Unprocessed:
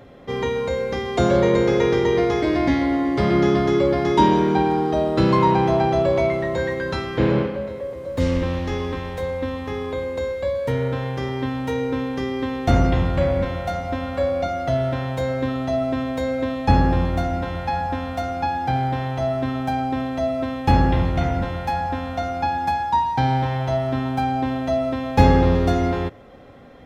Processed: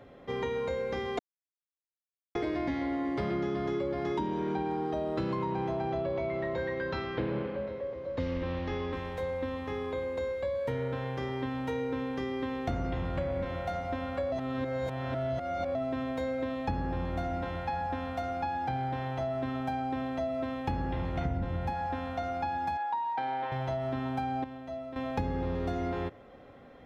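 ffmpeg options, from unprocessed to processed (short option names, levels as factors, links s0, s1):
-filter_complex "[0:a]asettb=1/sr,asplit=3[s0][s1][s2];[s0]atrim=end=5.924[s3];[s1]atrim=start=5.92:end=8.93,asetpts=PTS-STARTPTS,afade=t=in:d=0.004:c=qsin,afade=t=out:st=3.006:d=0.004:c=qsin,lowpass=f=5400:w=0.5412,lowpass=f=5400:w=1.3066[s4];[s2]atrim=start=8.926[s5];[s3][s4]acrossfade=d=0.004:c1=hsin:c2=qsin[s6];[s6][s5]acrossfade=d=0.004:c1=qsin:c2=hsin,asettb=1/sr,asplit=3[s7][s8][s9];[s7]atrim=end=21.254[s10];[s8]atrim=start=21.25:end=21.73,asetpts=PTS-STARTPTS,afade=t=in:d=0.004:c=qsin,afade=t=out:st=0.476:d=0.004:c=qsin,lowshelf=f=330:g=11.5[s11];[s9]atrim=start=21.726[s12];[s10][s11]acrossfade=d=0.004:c1=hsin:c2=qsin[s13];[s13][s12]acrossfade=d=0.004:c1=qsin:c2=hsin,asettb=1/sr,asplit=3[s14][s15][s16];[s14]atrim=end=22.774[s17];[s15]atrim=start=22.77:end=23.52,asetpts=PTS-STARTPTS,afade=t=in:d=0.004:c=qsin,afade=t=out:st=0.746:d=0.004:c=qsin,highpass=450,lowpass=3200[s18];[s16]atrim=start=23.516[s19];[s17][s18]acrossfade=d=0.004:c1=hsin:c2=qsin[s20];[s20][s19]acrossfade=d=0.004:c1=qsin:c2=hsin,asplit=7[s21][s22][s23][s24][s25][s26][s27];[s21]atrim=end=1.19,asetpts=PTS-STARTPTS,afade=t=out:st=1.186:d=0.004:c=hsin[s28];[s22]atrim=start=1.19:end=2.35,asetpts=PTS-STARTPTS,volume=0[s29];[s23]atrim=start=2.35:end=14.322,asetpts=PTS-STARTPTS,afade=t=in:d=0.004:c=hsin[s30];[s24]atrim=start=14.318:end=15.752,asetpts=PTS-STARTPTS,areverse[s31];[s25]atrim=start=15.748:end=24.442[s32];[s26]atrim=start=24.438:end=24.962,asetpts=PTS-STARTPTS,volume=0.282[s33];[s27]atrim=start=24.958[s34];[s28][s29][s30]concat=n=3:v=0:a=1[s35];[s35][s31]acrossfade=d=0.004:c1=hsin:c2=hsin[s36];[s36][s32]acrossfade=d=0.004:c1=hsin:c2=hsin[s37];[s37][s33]acrossfade=d=0.004:c1=hsin:c2=hsin[s38];[s38][s34]acrossfade=d=0.004:c1=hsin:c2=hsin,acrossover=split=410[s39][s40];[s40]acompressor=threshold=0.0891:ratio=6[s41];[s39][s41]amix=inputs=2:normalize=0,bass=f=250:g=-3,treble=f=4000:g=-6,acompressor=threshold=0.0794:ratio=6,volume=0.473"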